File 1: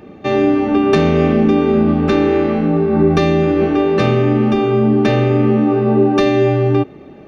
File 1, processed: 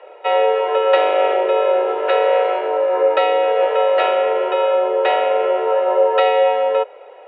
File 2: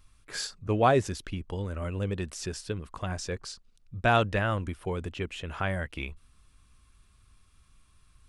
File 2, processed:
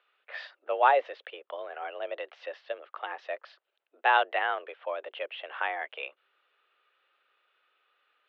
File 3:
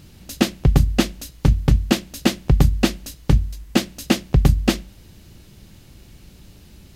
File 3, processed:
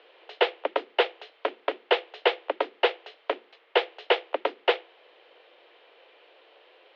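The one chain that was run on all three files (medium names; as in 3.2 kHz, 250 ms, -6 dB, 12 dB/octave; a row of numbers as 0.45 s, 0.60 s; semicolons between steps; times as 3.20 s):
mistuned SSB +150 Hz 340–3200 Hz; trim +1 dB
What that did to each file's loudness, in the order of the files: -2.5 LU, 0.0 LU, -7.5 LU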